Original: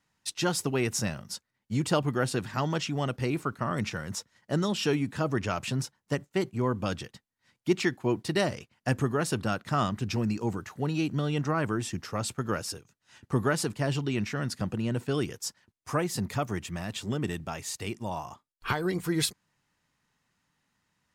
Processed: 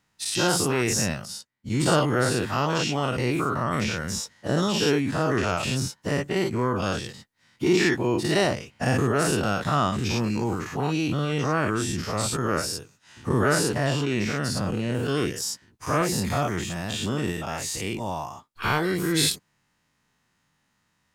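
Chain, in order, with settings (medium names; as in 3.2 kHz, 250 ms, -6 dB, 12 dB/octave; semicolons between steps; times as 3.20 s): every event in the spectrogram widened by 120 ms; 1.25–1.75 s: upward expansion 1.5:1, over -44 dBFS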